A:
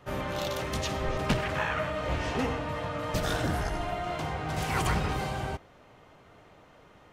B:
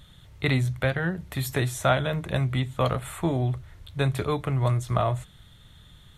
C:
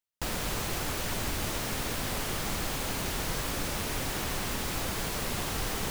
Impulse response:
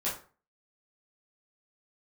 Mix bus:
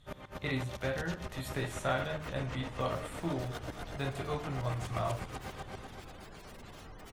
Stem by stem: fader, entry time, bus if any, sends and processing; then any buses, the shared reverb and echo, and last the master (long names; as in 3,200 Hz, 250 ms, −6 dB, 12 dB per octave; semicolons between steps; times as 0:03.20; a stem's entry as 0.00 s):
+0.5 dB, 0.00 s, no send, echo send −5 dB, downward compressor, threshold −30 dBFS, peak gain reduction 8.5 dB; tremolo with a ramp in dB swelling 7.8 Hz, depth 24 dB; automatic ducking −10 dB, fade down 0.30 s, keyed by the second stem
−15.5 dB, 0.00 s, send −3 dB, no echo send, low-pass filter 11,000 Hz
−16.0 dB, 1.30 s, no send, no echo send, gate on every frequency bin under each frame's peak −20 dB strong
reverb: on, RT60 0.40 s, pre-delay 7 ms
echo: repeating echo 244 ms, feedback 54%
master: no processing